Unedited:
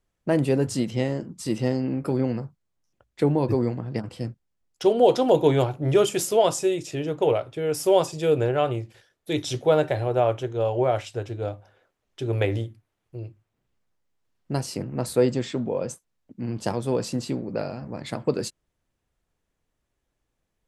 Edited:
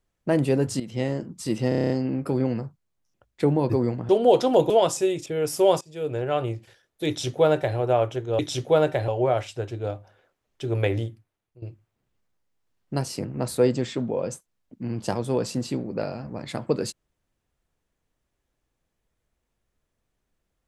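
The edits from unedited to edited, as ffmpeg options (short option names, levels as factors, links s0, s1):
-filter_complex "[0:a]asplit=16[s0][s1][s2][s3][s4][s5][s6][s7][s8][s9][s10][s11][s12][s13][s14][s15];[s0]atrim=end=0.8,asetpts=PTS-STARTPTS,afade=t=out:st=0.796:d=0.004:c=hsin:silence=0.223872[s16];[s1]atrim=start=0.8:end=1.722,asetpts=PTS-STARTPTS,afade=t=in:d=0.28:silence=0.223872[s17];[s2]atrim=start=1.688:end=1.722[s18];[s3]atrim=start=1.688:end=1.722[s19];[s4]atrim=start=1.688:end=1.722[s20];[s5]atrim=start=1.688:end=1.722[s21];[s6]atrim=start=1.688:end=1.722[s22];[s7]atrim=start=1.688:end=1.722[s23];[s8]atrim=start=1.688:end=3.882[s24];[s9]atrim=start=4.838:end=5.452[s25];[s10]atrim=start=6.318:end=6.882[s26];[s11]atrim=start=7.528:end=8.08,asetpts=PTS-STARTPTS,afade=t=out:st=0.548:d=0.004:c=hsin:silence=0.0794328[s27];[s12]atrim=start=8.08:end=10.662,asetpts=PTS-STARTPTS,afade=t=in:d=0.7:silence=0.0794328[s28];[s13]atrim=start=9.348:end=10.042[s29];[s14]atrim=start=10.658:end=13.2,asetpts=PTS-STARTPTS,afade=t=out:st=2.002:d=0.54:silence=0.149624[s30];[s15]atrim=start=13.2,asetpts=PTS-STARTPTS,afade=t=in:d=0.004:c=hsin:silence=0.149624[s31];[s16][s17]concat=n=2:v=0:a=1[s32];[s32][s18]acrossfade=d=0.004:c1=hsin:c2=hsin[s33];[s33][s19]acrossfade=d=0.004:c1=hsin:c2=hsin[s34];[s34][s20]acrossfade=d=0.004:c1=hsin:c2=hsin[s35];[s35][s21]acrossfade=d=0.004:c1=hsin:c2=hsin[s36];[s36][s22]acrossfade=d=0.004:c1=hsin:c2=hsin[s37];[s37][s23]acrossfade=d=0.004:c1=hsin:c2=hsin[s38];[s38][s24]acrossfade=d=0.004:c1=hsin:c2=hsin[s39];[s39][s25]acrossfade=d=0.004:c1=hsin:c2=hsin[s40];[s40][s26]acrossfade=d=0.004:c1=hsin:c2=hsin[s41];[s27][s28]concat=n=2:v=0:a=1[s42];[s41][s42]acrossfade=d=0.004:c1=hsin:c2=hsin[s43];[s43][s29]acrossfade=d=0.004:c1=hsin:c2=hsin[s44];[s30][s31]concat=n=2:v=0:a=1[s45];[s44][s45]acrossfade=d=0.004:c1=hsin:c2=hsin"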